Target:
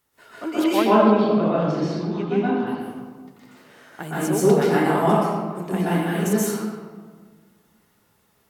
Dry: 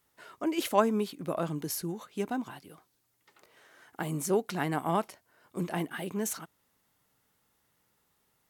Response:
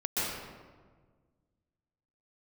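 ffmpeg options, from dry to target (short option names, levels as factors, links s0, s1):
-filter_complex "[0:a]asettb=1/sr,asplit=3[s0][s1][s2];[s0]atrim=end=0.644[s3];[s1]atrim=start=0.64:end=2.67,asetpts=PTS-STARTPTS,afade=t=in:d=0.004:c=qsin,afade=t=out:st=2.026:d=0.004:c=qsin,lowpass=f=4300:w=0.5412,lowpass=f=4300:w=1.3066[s4];[s2]atrim=start=2.666[s5];[s3][s4]acrossfade=d=0.004:c1=hsin:c2=qsin[s6];[s6][s5]acrossfade=d=0.004:c1=qsin:c2=hsin[s7];[1:a]atrim=start_sample=2205[s8];[s7][s8]afir=irnorm=-1:irlink=0,volume=1.26"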